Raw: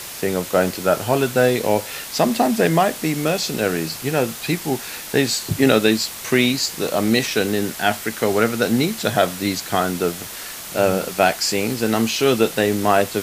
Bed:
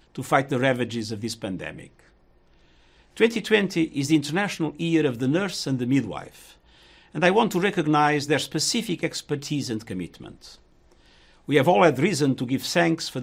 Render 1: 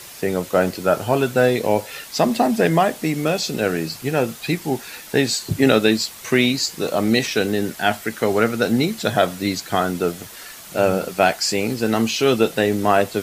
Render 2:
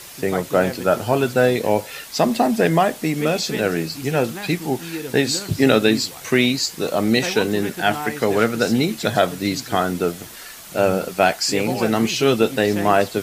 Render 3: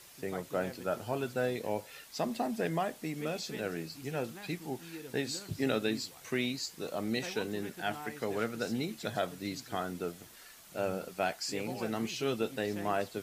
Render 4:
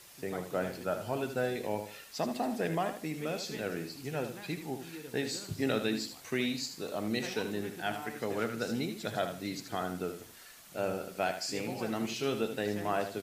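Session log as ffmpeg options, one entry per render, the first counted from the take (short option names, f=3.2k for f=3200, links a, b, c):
-af "afftdn=nr=7:nf=-33"
-filter_complex "[1:a]volume=-9dB[a];[0:a][a]amix=inputs=2:normalize=0"
-af "volume=-16dB"
-af "aecho=1:1:77|154|231:0.355|0.0993|0.0278"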